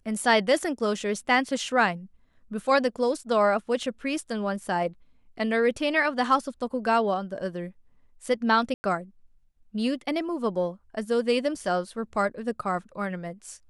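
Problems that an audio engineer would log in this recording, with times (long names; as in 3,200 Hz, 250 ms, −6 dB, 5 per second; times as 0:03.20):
0:08.74–0:08.84: drop-out 100 ms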